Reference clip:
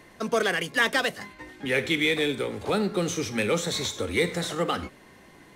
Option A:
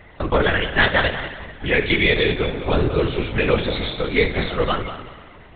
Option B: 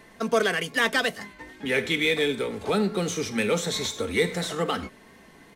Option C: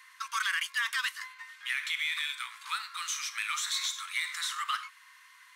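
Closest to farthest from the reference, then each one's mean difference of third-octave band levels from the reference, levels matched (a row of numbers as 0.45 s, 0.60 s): B, A, C; 1.0 dB, 10.0 dB, 17.5 dB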